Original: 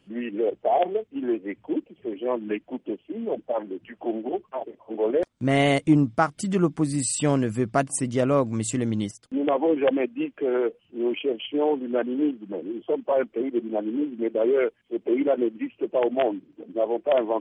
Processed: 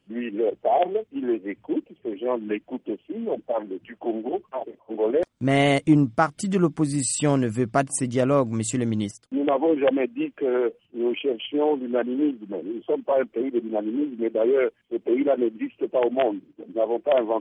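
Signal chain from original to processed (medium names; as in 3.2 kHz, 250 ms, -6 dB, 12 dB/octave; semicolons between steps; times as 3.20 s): gate -46 dBFS, range -7 dB; trim +1 dB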